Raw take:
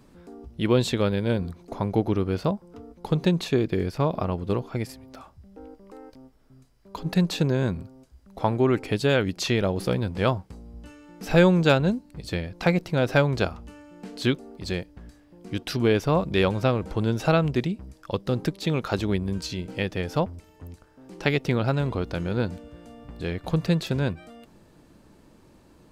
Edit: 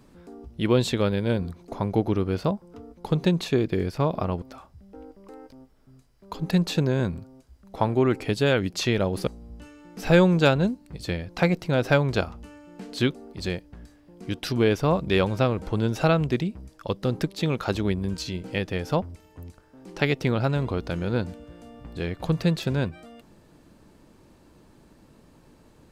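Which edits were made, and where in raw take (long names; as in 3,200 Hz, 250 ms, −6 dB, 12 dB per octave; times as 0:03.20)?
0:04.42–0:05.05: remove
0:09.90–0:10.51: remove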